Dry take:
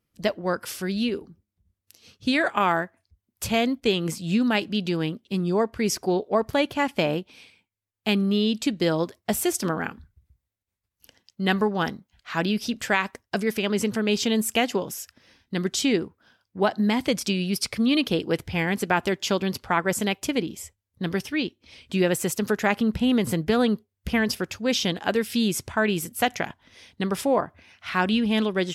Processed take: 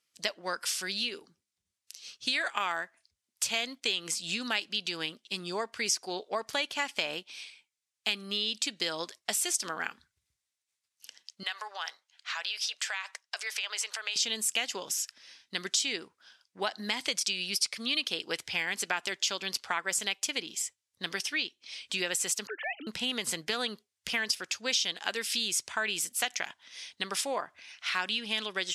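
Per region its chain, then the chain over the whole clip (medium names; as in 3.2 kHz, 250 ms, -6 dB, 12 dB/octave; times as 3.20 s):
11.43–14.16 s: high-pass 640 Hz 24 dB/octave + treble shelf 9.1 kHz -8.5 dB + compression 3:1, threshold -32 dBFS
22.47–22.87 s: formants replaced by sine waves + compression 1.5:1, threshold -42 dBFS
whole clip: frequency weighting ITU-R 468; compression 2.5:1, threshold -26 dBFS; trim -3.5 dB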